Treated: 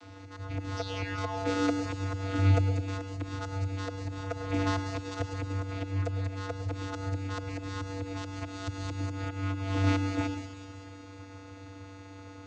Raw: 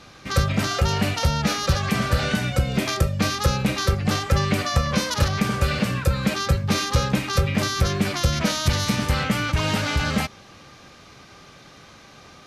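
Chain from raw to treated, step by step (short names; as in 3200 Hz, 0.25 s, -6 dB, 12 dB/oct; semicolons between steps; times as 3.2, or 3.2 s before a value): notches 50/100/150/200/250 Hz; auto swell 0.408 s; high shelf 5700 Hz +4 dB; painted sound fall, 0.76–1.72, 210–5500 Hz -35 dBFS; vocoder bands 16, square 96.6 Hz; thin delay 0.191 s, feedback 62%, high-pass 4400 Hz, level -4 dB; reverb RT60 0.55 s, pre-delay 95 ms, DRR 9 dB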